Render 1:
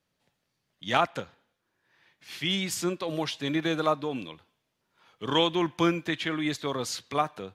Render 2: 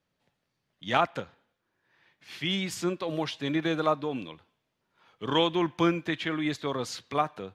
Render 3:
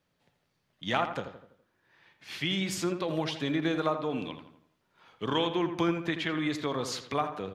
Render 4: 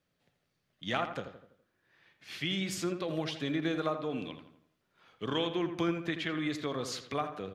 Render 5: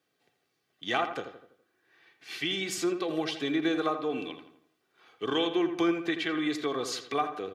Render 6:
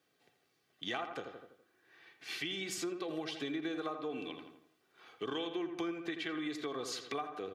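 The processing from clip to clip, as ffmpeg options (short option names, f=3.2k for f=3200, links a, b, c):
-af "highshelf=f=5.6k:g=-9"
-filter_complex "[0:a]acompressor=threshold=-33dB:ratio=2,asplit=2[a][b];[b]adelay=83,lowpass=f=2.5k:p=1,volume=-8.5dB,asplit=2[c][d];[d]adelay=83,lowpass=f=2.5k:p=1,volume=0.48,asplit=2[e][f];[f]adelay=83,lowpass=f=2.5k:p=1,volume=0.48,asplit=2[g][h];[h]adelay=83,lowpass=f=2.5k:p=1,volume=0.48,asplit=2[i][j];[j]adelay=83,lowpass=f=2.5k:p=1,volume=0.48[k];[c][e][g][i][k]amix=inputs=5:normalize=0[l];[a][l]amix=inputs=2:normalize=0,volume=3dB"
-af "equalizer=f=920:t=o:w=0.3:g=-7,volume=-3dB"
-af "highpass=190,aecho=1:1:2.6:0.53,volume=3dB"
-af "acompressor=threshold=-40dB:ratio=3,volume=1dB"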